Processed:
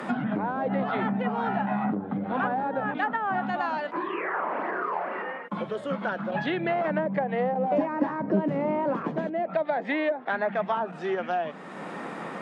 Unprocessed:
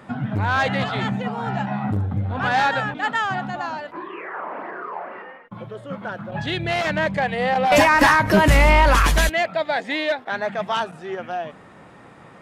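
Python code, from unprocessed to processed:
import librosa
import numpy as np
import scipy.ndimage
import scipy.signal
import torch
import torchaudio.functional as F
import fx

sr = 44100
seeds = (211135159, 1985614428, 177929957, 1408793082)

y = fx.env_lowpass_down(x, sr, base_hz=500.0, full_db=-16.5)
y = scipy.signal.sosfilt(scipy.signal.butter(6, 170.0, 'highpass', fs=sr, output='sos'), y)
y = fx.band_squash(y, sr, depth_pct=70)
y = y * 10.0 ** (-1.5 / 20.0)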